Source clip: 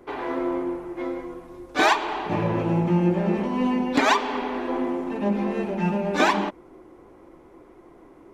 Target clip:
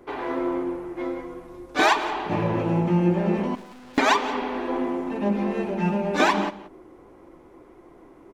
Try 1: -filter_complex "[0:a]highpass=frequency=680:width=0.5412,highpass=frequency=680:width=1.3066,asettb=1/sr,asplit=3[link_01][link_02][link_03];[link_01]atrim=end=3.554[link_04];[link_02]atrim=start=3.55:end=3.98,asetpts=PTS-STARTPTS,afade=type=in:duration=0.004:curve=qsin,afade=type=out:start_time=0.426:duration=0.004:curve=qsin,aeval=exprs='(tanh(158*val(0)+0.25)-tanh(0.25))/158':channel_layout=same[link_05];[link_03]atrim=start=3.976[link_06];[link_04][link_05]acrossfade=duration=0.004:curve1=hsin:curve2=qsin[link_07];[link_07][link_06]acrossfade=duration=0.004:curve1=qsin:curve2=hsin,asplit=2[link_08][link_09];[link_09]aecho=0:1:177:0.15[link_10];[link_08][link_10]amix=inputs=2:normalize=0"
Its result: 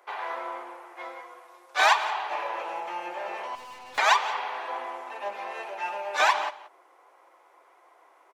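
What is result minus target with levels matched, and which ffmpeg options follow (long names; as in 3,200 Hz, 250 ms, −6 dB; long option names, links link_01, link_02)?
500 Hz band −5.5 dB
-filter_complex "[0:a]asettb=1/sr,asplit=3[link_01][link_02][link_03];[link_01]atrim=end=3.554[link_04];[link_02]atrim=start=3.55:end=3.98,asetpts=PTS-STARTPTS,afade=type=in:duration=0.004:curve=qsin,afade=type=out:start_time=0.426:duration=0.004:curve=qsin,aeval=exprs='(tanh(158*val(0)+0.25)-tanh(0.25))/158':channel_layout=same[link_05];[link_03]atrim=start=3.976[link_06];[link_04][link_05]acrossfade=duration=0.004:curve1=hsin:curve2=qsin[link_07];[link_07][link_06]acrossfade=duration=0.004:curve1=qsin:curve2=hsin,asplit=2[link_08][link_09];[link_09]aecho=0:1:177:0.15[link_10];[link_08][link_10]amix=inputs=2:normalize=0"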